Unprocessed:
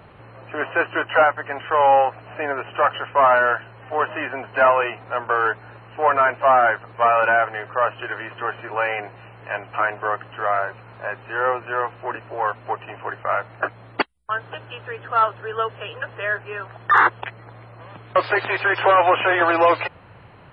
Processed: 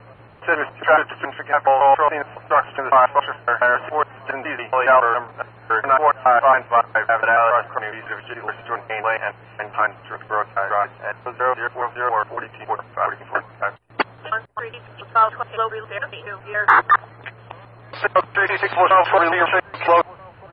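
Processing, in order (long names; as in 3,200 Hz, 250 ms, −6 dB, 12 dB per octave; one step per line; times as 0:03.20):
slices reordered back to front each 139 ms, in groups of 3
slap from a distant wall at 220 metres, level −25 dB
dynamic equaliser 1,100 Hz, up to +4 dB, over −29 dBFS, Q 0.82
level −1 dB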